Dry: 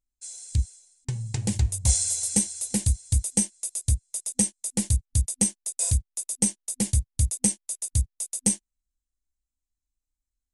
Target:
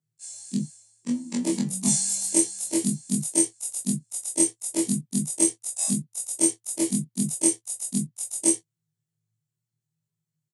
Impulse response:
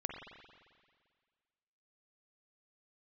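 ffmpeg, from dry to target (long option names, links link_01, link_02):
-af "afftfilt=real='re':imag='-im':win_size=2048:overlap=0.75,afreqshift=110,aecho=1:1:12|24:0.299|0.237,volume=4dB"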